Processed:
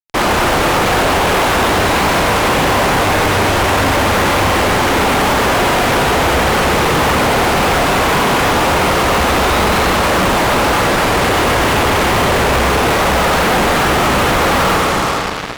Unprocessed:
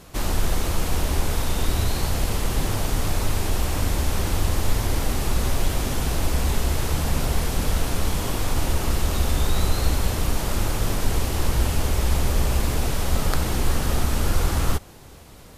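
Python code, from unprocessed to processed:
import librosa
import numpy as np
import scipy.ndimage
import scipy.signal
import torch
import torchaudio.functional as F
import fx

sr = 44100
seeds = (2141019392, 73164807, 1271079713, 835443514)

p1 = scipy.ndimage.gaussian_filter1d(x, 3.4, mode='constant')
p2 = fx.dereverb_blind(p1, sr, rt60_s=0.55)
p3 = fx.highpass(p2, sr, hz=740.0, slope=6)
p4 = p3 + fx.echo_single(p3, sr, ms=453, db=-22.0, dry=0)
p5 = fx.rev_schroeder(p4, sr, rt60_s=3.3, comb_ms=32, drr_db=0.0)
p6 = fx.fuzz(p5, sr, gain_db=46.0, gate_db=-45.0)
y = p6 * 10.0 ** (2.5 / 20.0)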